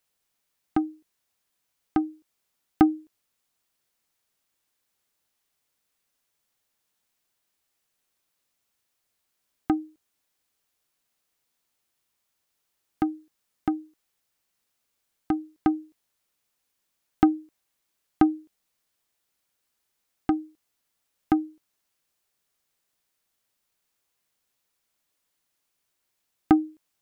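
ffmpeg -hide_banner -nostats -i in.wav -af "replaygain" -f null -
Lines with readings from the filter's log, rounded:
track_gain = +16.4 dB
track_peak = 0.444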